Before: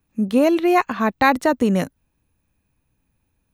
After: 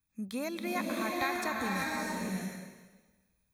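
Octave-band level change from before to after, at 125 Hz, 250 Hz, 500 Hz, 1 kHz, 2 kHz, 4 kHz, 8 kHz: −13.0, −16.0, −17.5, −14.5, −10.0, −7.5, −3.0 decibels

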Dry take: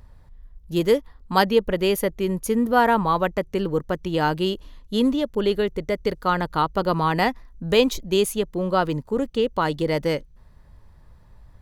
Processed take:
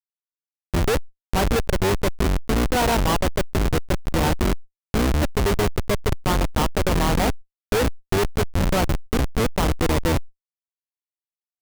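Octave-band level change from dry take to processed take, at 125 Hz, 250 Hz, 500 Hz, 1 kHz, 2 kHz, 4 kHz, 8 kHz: +6.5, −1.0, −2.5, −2.5, +0.5, +0.5, +6.0 decibels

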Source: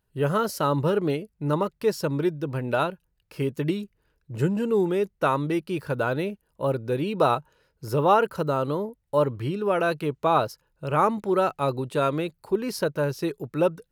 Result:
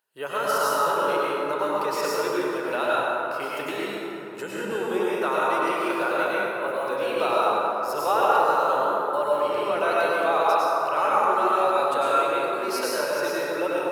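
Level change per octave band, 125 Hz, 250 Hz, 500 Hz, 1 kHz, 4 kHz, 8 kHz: −18.5 dB, −5.0 dB, +1.0 dB, +5.0 dB, +4.5 dB, can't be measured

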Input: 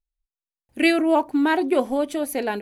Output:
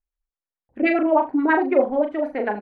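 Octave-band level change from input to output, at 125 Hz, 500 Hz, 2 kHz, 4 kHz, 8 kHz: can't be measured, +2.5 dB, +0.5 dB, below −10 dB, below −35 dB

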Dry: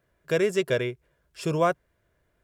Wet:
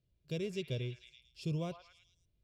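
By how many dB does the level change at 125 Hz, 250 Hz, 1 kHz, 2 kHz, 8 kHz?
−4.5, −10.0, −23.5, −19.0, −15.5 decibels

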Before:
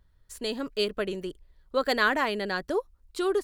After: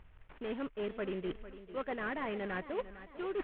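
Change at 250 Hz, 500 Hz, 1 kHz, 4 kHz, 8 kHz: −7.0 dB, −9.5 dB, −11.5 dB, −19.0 dB, below −35 dB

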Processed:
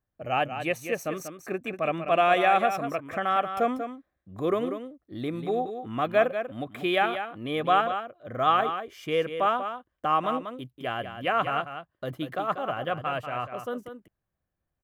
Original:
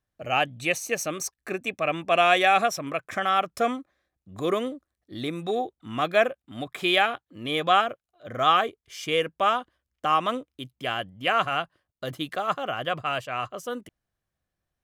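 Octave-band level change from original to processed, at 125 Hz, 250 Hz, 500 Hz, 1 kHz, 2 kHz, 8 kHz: +0.5 dB, +0.5 dB, 0.0 dB, −1.0 dB, −4.0 dB, below −10 dB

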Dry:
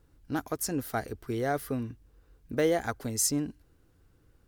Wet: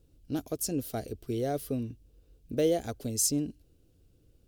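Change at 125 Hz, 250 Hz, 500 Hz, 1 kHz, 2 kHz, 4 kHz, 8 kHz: 0.0, 0.0, −0.5, −6.0, −11.5, 0.0, 0.0 decibels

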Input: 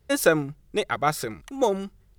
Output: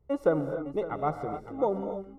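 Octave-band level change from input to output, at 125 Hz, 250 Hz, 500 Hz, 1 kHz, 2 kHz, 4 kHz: −4.0 dB, −3.5 dB, −3.5 dB, −5.5 dB, −17.0 dB, below −20 dB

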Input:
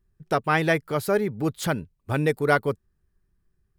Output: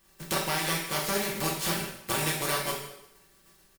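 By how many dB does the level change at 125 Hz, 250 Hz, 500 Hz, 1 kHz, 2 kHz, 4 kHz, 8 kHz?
−8.0, −8.0, −10.0, −5.5, −5.0, +6.5, +9.5 decibels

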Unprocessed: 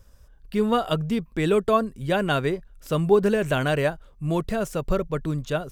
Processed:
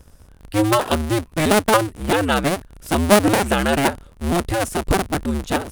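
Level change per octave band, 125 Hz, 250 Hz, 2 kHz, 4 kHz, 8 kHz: +3.0, +5.5, +7.5, +9.0, +17.0 decibels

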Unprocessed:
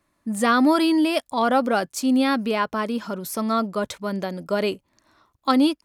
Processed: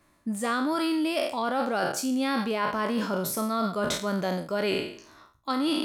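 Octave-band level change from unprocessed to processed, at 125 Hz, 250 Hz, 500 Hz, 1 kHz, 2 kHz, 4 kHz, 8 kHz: −1.0, −7.0, −4.5, −5.5, −4.0, −3.0, −0.5 decibels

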